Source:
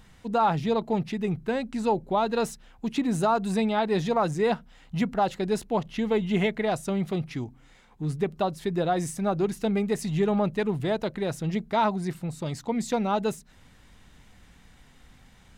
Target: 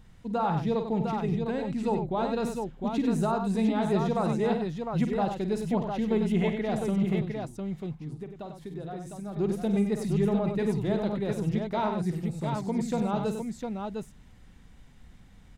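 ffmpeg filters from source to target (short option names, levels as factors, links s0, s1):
-filter_complex "[0:a]lowshelf=f=410:g=8.5,asplit=3[s0][s1][s2];[s0]afade=t=out:st=7.26:d=0.02[s3];[s1]acompressor=threshold=0.0141:ratio=2,afade=t=in:st=7.26:d=0.02,afade=t=out:st=9.36:d=0.02[s4];[s2]afade=t=in:st=9.36:d=0.02[s5];[s3][s4][s5]amix=inputs=3:normalize=0,aecho=1:1:50|96|705:0.316|0.422|0.562,volume=0.398"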